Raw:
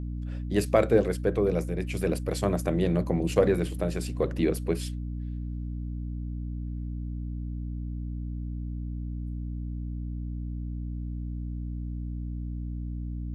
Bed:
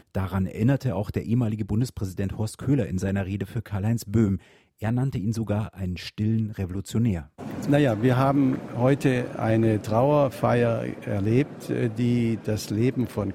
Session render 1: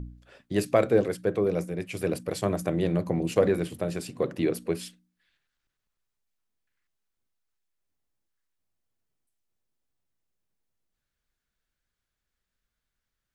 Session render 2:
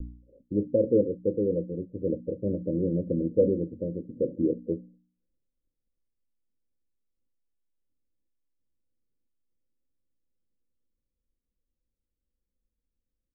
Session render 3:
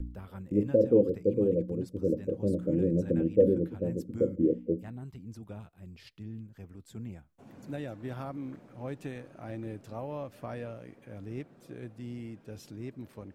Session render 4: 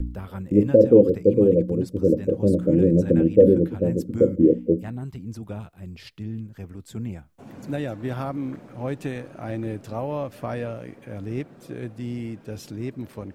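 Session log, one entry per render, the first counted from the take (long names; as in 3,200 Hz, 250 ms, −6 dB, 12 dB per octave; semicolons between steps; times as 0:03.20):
hum removal 60 Hz, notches 5
Butterworth low-pass 550 Hz 96 dB per octave; comb filter 3.7 ms, depth 42%
mix in bed −18 dB
level +9.5 dB; brickwall limiter −3 dBFS, peak gain reduction 2 dB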